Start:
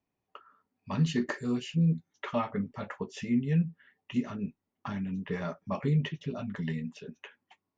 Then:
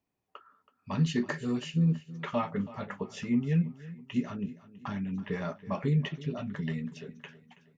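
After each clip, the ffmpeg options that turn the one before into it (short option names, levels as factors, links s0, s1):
-af "aecho=1:1:326|652|978|1304:0.133|0.0587|0.0258|0.0114"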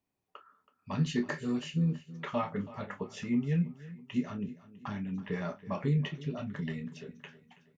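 -filter_complex "[0:a]asplit=2[s0][s1];[s1]adelay=28,volume=0.316[s2];[s0][s2]amix=inputs=2:normalize=0,volume=0.794"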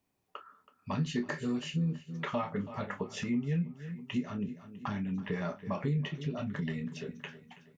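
-af "acompressor=threshold=0.01:ratio=2,volume=1.88"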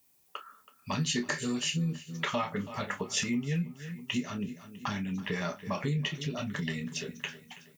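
-af "crystalizer=i=6:c=0"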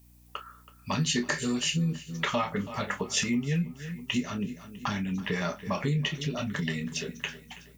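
-af "aeval=exprs='val(0)+0.00112*(sin(2*PI*60*n/s)+sin(2*PI*2*60*n/s)/2+sin(2*PI*3*60*n/s)/3+sin(2*PI*4*60*n/s)/4+sin(2*PI*5*60*n/s)/5)':c=same,volume=1.41"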